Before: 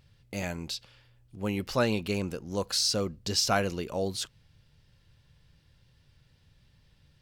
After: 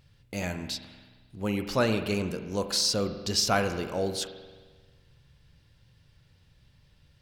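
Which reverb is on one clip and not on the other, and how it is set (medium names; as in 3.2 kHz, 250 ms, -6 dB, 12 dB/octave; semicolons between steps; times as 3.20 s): spring tank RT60 1.5 s, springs 44 ms, chirp 65 ms, DRR 8 dB; trim +1 dB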